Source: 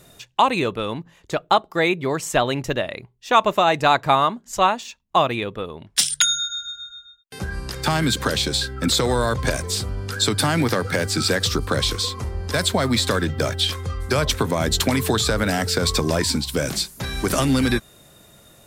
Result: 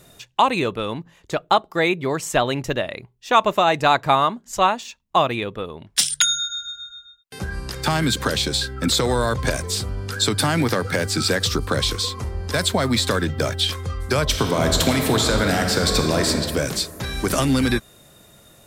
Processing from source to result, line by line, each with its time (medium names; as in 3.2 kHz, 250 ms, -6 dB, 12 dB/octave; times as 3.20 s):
14.24–16.28 s: reverb throw, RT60 2.3 s, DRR 2.5 dB